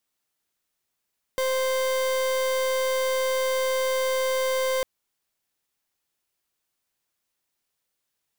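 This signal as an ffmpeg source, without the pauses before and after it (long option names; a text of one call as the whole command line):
ffmpeg -f lavfi -i "aevalsrc='0.0596*(2*lt(mod(522*t,1),0.39)-1)':duration=3.45:sample_rate=44100" out.wav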